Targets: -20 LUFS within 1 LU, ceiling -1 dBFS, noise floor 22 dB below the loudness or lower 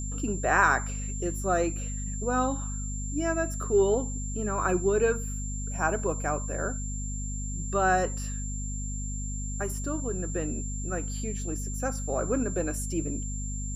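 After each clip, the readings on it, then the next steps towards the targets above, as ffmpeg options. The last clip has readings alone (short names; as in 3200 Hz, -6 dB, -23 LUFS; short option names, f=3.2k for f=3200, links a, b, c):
hum 50 Hz; harmonics up to 250 Hz; hum level -31 dBFS; steady tone 7300 Hz; tone level -38 dBFS; loudness -29.5 LUFS; peak -8.5 dBFS; loudness target -20.0 LUFS
-> -af "bandreject=f=50:t=h:w=4,bandreject=f=100:t=h:w=4,bandreject=f=150:t=h:w=4,bandreject=f=200:t=h:w=4,bandreject=f=250:t=h:w=4"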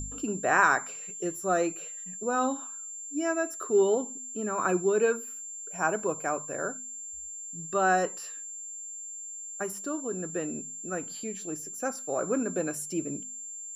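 hum none; steady tone 7300 Hz; tone level -38 dBFS
-> -af "bandreject=f=7.3k:w=30"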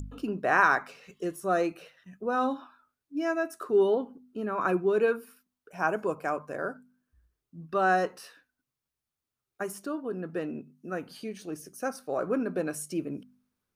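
steady tone none; loudness -30.0 LUFS; peak -8.5 dBFS; loudness target -20.0 LUFS
-> -af "volume=10dB,alimiter=limit=-1dB:level=0:latency=1"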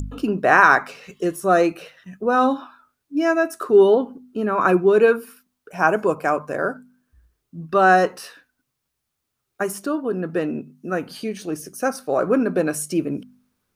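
loudness -20.0 LUFS; peak -1.0 dBFS; noise floor -78 dBFS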